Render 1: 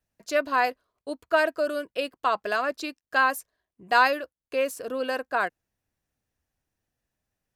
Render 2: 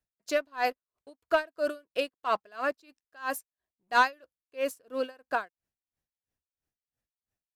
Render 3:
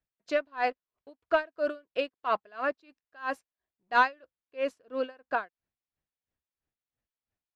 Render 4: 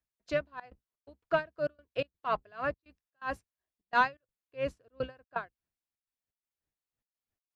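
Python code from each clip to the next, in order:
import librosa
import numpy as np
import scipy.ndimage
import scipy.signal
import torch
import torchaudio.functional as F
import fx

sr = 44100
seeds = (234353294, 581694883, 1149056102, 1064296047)

y1 = fx.leveller(x, sr, passes=1)
y1 = y1 * 10.0 ** (-28 * (0.5 - 0.5 * np.cos(2.0 * np.pi * 3.0 * np.arange(len(y1)) / sr)) / 20.0)
y1 = F.gain(torch.from_numpy(y1), -3.5).numpy()
y2 = scipy.signal.sosfilt(scipy.signal.butter(2, 3400.0, 'lowpass', fs=sr, output='sos'), y1)
y3 = fx.octave_divider(y2, sr, octaves=2, level_db=-3.0)
y3 = fx.step_gate(y3, sr, bpm=126, pattern='xxxxx.xx.', floor_db=-24.0, edge_ms=4.5)
y3 = F.gain(torch.from_numpy(y3), -3.0).numpy()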